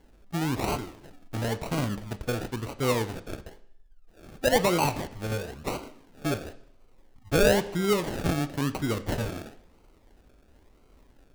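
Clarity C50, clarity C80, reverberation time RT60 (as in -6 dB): 15.5 dB, 18.0 dB, 0.70 s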